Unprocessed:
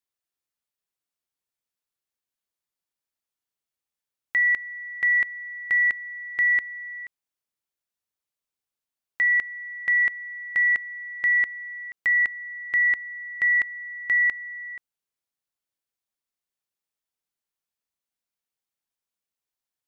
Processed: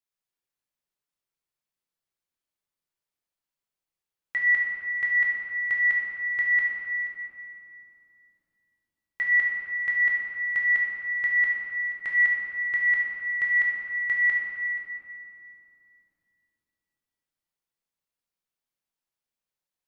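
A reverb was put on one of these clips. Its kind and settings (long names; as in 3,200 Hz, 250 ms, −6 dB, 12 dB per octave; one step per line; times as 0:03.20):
rectangular room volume 120 cubic metres, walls hard, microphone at 0.64 metres
level −5.5 dB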